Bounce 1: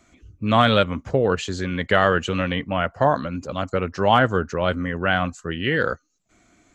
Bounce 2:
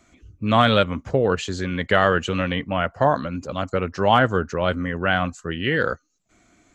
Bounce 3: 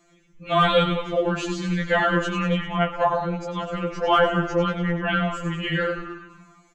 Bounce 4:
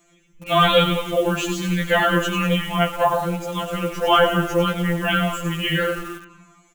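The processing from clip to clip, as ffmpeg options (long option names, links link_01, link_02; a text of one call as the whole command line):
ffmpeg -i in.wav -af anull out.wav
ffmpeg -i in.wav -filter_complex "[0:a]asplit=9[link_01][link_02][link_03][link_04][link_05][link_06][link_07][link_08][link_09];[link_02]adelay=97,afreqshift=-49,volume=-8dB[link_10];[link_03]adelay=194,afreqshift=-98,volume=-12.3dB[link_11];[link_04]adelay=291,afreqshift=-147,volume=-16.6dB[link_12];[link_05]adelay=388,afreqshift=-196,volume=-20.9dB[link_13];[link_06]adelay=485,afreqshift=-245,volume=-25.2dB[link_14];[link_07]adelay=582,afreqshift=-294,volume=-29.5dB[link_15];[link_08]adelay=679,afreqshift=-343,volume=-33.8dB[link_16];[link_09]adelay=776,afreqshift=-392,volume=-38.1dB[link_17];[link_01][link_10][link_11][link_12][link_13][link_14][link_15][link_16][link_17]amix=inputs=9:normalize=0,afftfilt=real='re*2.83*eq(mod(b,8),0)':imag='im*2.83*eq(mod(b,8),0)':win_size=2048:overlap=0.75" out.wav
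ffmpeg -i in.wav -filter_complex "[0:a]asplit=2[link_01][link_02];[link_02]acrusher=bits=5:mix=0:aa=0.000001,volume=-9.5dB[link_03];[link_01][link_03]amix=inputs=2:normalize=0,aexciter=amount=1.9:drive=1:freq=2500" out.wav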